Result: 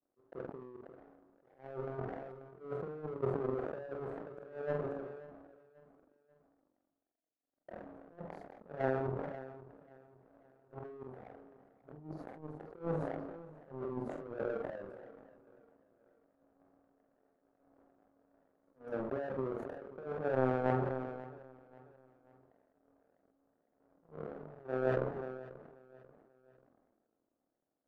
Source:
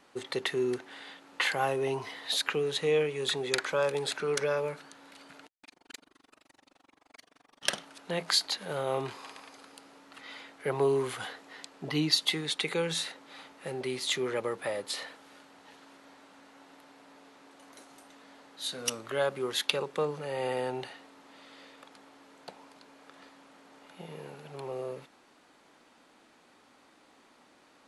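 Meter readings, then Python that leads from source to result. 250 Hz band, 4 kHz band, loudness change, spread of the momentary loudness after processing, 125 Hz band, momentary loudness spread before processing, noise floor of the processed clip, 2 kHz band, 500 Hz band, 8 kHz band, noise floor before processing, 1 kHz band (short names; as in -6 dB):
-4.0 dB, under -35 dB, -8.5 dB, 21 LU, -2.0 dB, 19 LU, -85 dBFS, -14.0 dB, -6.5 dB, under -40 dB, -63 dBFS, -6.0 dB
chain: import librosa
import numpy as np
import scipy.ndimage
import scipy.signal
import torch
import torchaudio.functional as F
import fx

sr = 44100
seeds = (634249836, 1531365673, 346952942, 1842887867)

p1 = scipy.signal.sosfilt(scipy.signal.ellip(4, 1.0, 50, 700.0, 'lowpass', fs=sr, output='sos'), x)
p2 = fx.chorus_voices(p1, sr, voices=6, hz=0.28, base_ms=28, depth_ms=4.7, mix_pct=35)
p3 = scipy.signal.sosfilt(scipy.signal.butter(2, 110.0, 'highpass', fs=sr, output='sos'), p2)
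p4 = fx.over_compress(p3, sr, threshold_db=-40.0, ratio=-1.0)
p5 = fx.auto_swell(p4, sr, attack_ms=220.0)
p6 = fx.hum_notches(p5, sr, base_hz=60, count=7)
p7 = fx.power_curve(p6, sr, exponent=2.0)
p8 = fx.doubler(p7, sr, ms=46.0, db=-9)
p9 = p8 + fx.echo_feedback(p8, sr, ms=537, feedback_pct=44, wet_db=-19.5, dry=0)
p10 = fx.sustainer(p9, sr, db_per_s=33.0)
y = p10 * librosa.db_to_amplitude(10.0)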